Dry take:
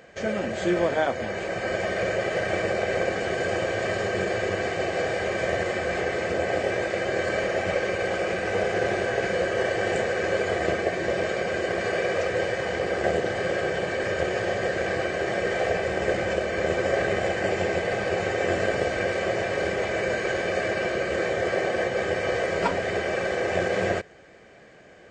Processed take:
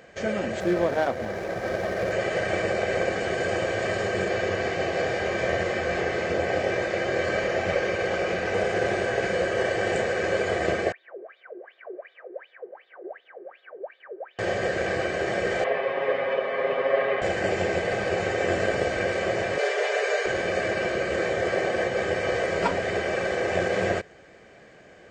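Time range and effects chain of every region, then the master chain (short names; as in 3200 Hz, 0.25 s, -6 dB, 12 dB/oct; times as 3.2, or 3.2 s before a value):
0.6–2.12 median filter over 15 samples + high shelf 5400 Hz -4.5 dB
4.28–8.54 LPF 7300 Hz 24 dB/oct + doubler 23 ms -11 dB
10.92–14.39 three-band isolator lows -21 dB, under 220 Hz, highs -16 dB, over 2200 Hz + wah 2.7 Hz 350–3700 Hz, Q 19
15.64–17.22 speaker cabinet 330–3000 Hz, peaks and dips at 340 Hz -9 dB, 740 Hz -4 dB, 1100 Hz +6 dB, 1500 Hz -6 dB, 2400 Hz -3 dB + comb 7.4 ms, depth 86%
19.58–20.26 steep high-pass 380 Hz 96 dB/oct + comb 6.8 ms, depth 93%
whole clip: dry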